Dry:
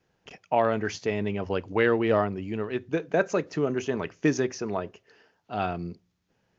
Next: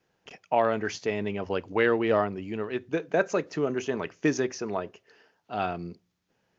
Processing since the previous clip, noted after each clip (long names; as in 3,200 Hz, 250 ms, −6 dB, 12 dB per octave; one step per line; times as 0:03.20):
low-shelf EQ 140 Hz −8 dB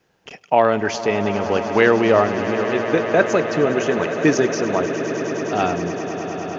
echo that builds up and dies away 103 ms, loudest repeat 8, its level −15 dB
level +8.5 dB